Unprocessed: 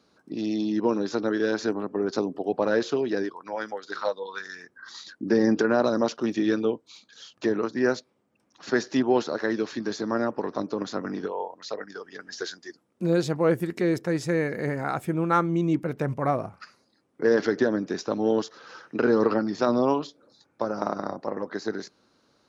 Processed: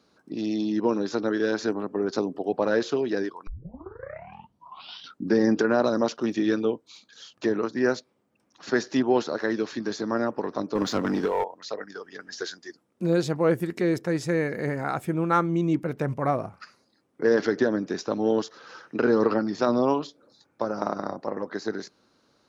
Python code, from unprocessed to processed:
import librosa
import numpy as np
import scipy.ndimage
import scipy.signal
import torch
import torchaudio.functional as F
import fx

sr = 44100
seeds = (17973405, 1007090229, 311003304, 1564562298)

y = fx.leveller(x, sr, passes=2, at=(10.75, 11.44))
y = fx.edit(y, sr, fx.tape_start(start_s=3.47, length_s=1.89), tone=tone)